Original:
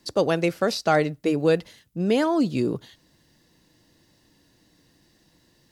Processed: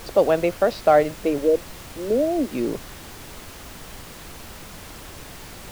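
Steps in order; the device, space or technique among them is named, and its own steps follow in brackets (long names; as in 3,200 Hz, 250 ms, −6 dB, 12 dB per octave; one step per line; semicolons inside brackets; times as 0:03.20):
0:01.38–0:02.52: elliptic band-pass filter 230–610 Hz
horn gramophone (band-pass filter 190–3,200 Hz; parametric band 650 Hz +8.5 dB; tape wow and flutter; pink noise bed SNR 15 dB)
level −1 dB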